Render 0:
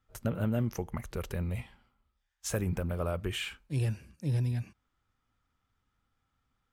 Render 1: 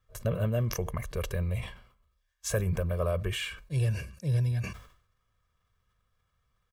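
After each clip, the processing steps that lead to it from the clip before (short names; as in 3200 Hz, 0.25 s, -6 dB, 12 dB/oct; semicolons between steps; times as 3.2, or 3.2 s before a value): comb 1.8 ms, depth 77%; sustainer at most 96 dB/s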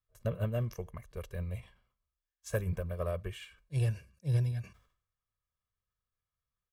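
in parallel at -4 dB: soft clip -25.5 dBFS, distortion -15 dB; on the sum: upward expander 2.5:1, over -33 dBFS; gain -3.5 dB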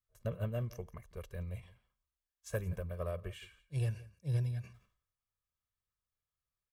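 echo 0.171 s -20 dB; gain -4 dB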